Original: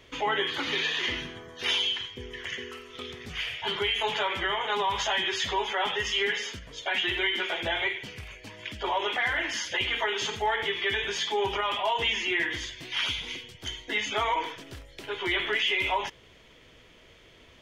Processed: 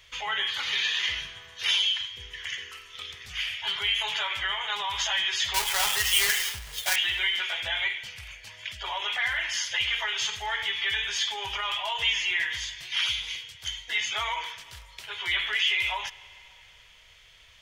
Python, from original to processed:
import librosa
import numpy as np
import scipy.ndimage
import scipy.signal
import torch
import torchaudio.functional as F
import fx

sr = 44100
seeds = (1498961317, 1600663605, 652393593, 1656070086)

y = fx.halfwave_hold(x, sr, at=(5.54, 6.96))
y = fx.tone_stack(y, sr, knobs='10-0-10')
y = fx.rev_freeverb(y, sr, rt60_s=3.2, hf_ratio=0.9, predelay_ms=60, drr_db=19.5)
y = F.gain(torch.from_numpy(y), 5.0).numpy()